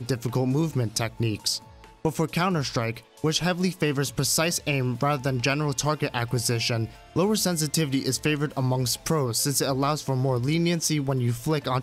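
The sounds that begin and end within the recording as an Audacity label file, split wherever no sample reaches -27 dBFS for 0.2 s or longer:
2.050000	2.970000	sound
3.240000	6.850000	sound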